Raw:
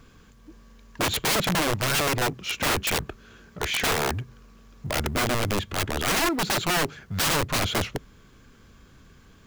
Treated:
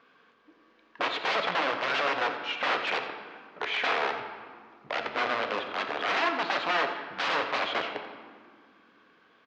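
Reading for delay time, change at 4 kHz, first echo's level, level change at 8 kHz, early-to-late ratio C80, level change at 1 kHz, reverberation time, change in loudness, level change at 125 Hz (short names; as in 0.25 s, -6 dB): 87 ms, -5.5 dB, -13.0 dB, -23.5 dB, 7.5 dB, 0.0 dB, 1.9 s, -4.0 dB, -24.0 dB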